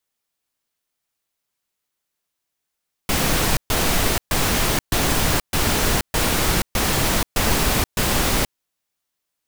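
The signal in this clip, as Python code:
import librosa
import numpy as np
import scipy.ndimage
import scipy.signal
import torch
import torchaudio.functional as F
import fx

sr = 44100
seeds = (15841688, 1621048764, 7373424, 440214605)

y = fx.noise_burst(sr, seeds[0], colour='pink', on_s=0.48, off_s=0.13, bursts=9, level_db=-19.0)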